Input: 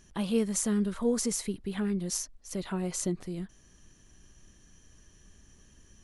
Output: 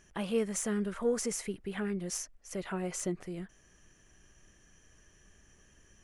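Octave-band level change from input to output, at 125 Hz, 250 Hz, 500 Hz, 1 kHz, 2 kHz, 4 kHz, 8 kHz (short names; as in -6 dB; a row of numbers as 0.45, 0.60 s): -5.0, -5.5, -0.5, -0.5, +2.0, -4.5, -4.0 dB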